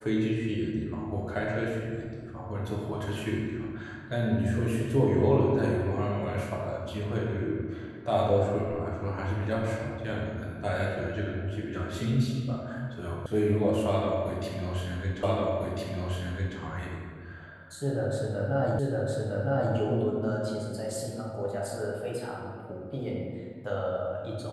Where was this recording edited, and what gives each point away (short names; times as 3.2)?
13.26 sound cut off
15.23 repeat of the last 1.35 s
18.79 repeat of the last 0.96 s